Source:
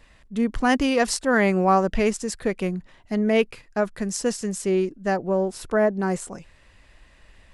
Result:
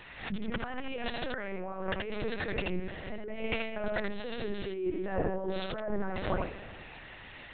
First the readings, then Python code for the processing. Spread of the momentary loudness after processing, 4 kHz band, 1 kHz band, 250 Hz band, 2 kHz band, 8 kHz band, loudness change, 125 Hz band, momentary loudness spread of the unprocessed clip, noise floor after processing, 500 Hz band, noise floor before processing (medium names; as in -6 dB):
8 LU, -7.5 dB, -14.0 dB, -14.0 dB, -9.5 dB, under -40 dB, -12.5 dB, -9.5 dB, 9 LU, -49 dBFS, -12.0 dB, -55 dBFS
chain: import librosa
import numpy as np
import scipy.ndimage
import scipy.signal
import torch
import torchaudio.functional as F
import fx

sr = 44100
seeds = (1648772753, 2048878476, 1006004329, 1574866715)

y = fx.rev_spring(x, sr, rt60_s=2.1, pass_ms=(54,), chirp_ms=70, drr_db=20.0)
y = fx.over_compress(y, sr, threshold_db=-32.0, ratio=-1.0)
y = fx.highpass(y, sr, hz=360.0, slope=6)
y = y + 10.0 ** (-3.5 / 20.0) * np.pad(y, (int(78 * sr / 1000.0), 0))[:len(y)]
y = fx.lpc_vocoder(y, sr, seeds[0], excitation='pitch_kept', order=10)
y = fx.pre_swell(y, sr, db_per_s=94.0)
y = y * 10.0 ** (1.0 / 20.0)